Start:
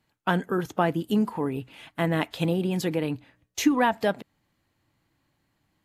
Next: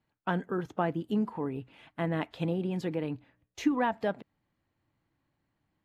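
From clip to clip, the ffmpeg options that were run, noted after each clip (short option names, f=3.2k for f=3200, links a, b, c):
-af "aemphasis=mode=reproduction:type=75kf,volume=-5.5dB"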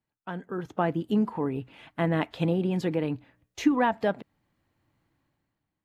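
-af "dynaudnorm=f=140:g=9:m=13dB,volume=-7.5dB"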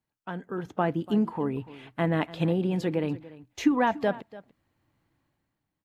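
-af "aecho=1:1:290:0.119"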